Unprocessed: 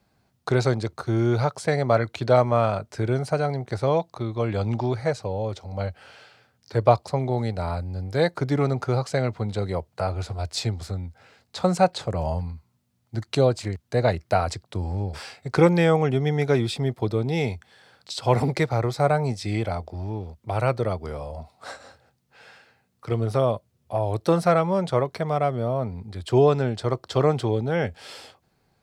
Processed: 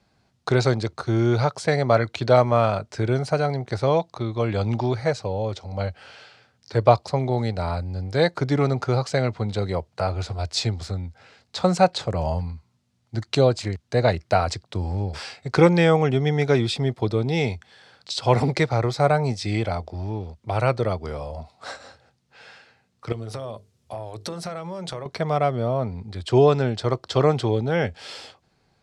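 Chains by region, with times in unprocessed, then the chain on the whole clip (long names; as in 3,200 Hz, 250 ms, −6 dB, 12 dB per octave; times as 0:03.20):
0:23.12–0:25.06: downward compressor 8 to 1, threshold −30 dBFS + high-shelf EQ 6,600 Hz +11 dB + mains-hum notches 50/100/150/200/250/300/350/400/450 Hz
whole clip: low-pass filter 6,000 Hz 12 dB per octave; high-shelf EQ 3,900 Hz +7 dB; level +1.5 dB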